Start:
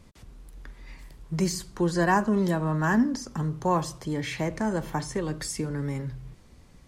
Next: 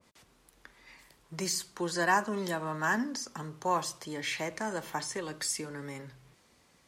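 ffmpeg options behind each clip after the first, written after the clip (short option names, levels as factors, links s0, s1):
-af "highpass=f=670:p=1,adynamicequalizer=threshold=0.00891:dfrequency=1700:dqfactor=0.7:tfrequency=1700:tqfactor=0.7:attack=5:release=100:ratio=0.375:range=1.5:mode=boostabove:tftype=highshelf,volume=0.841"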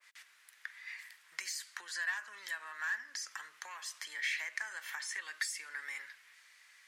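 -af "asoftclip=type=tanh:threshold=0.0841,acompressor=threshold=0.0112:ratio=12,highpass=f=1800:t=q:w=3.1,volume=1.19"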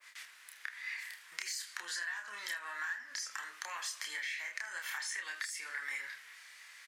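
-af "acompressor=threshold=0.00708:ratio=12,aecho=1:1:29|78:0.668|0.158,volume=1.88"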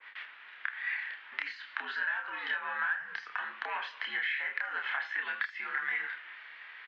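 -af "highpass=f=280:t=q:w=0.5412,highpass=f=280:t=q:w=1.307,lowpass=f=3300:t=q:w=0.5176,lowpass=f=3300:t=q:w=0.7071,lowpass=f=3300:t=q:w=1.932,afreqshift=-91,volume=2.24"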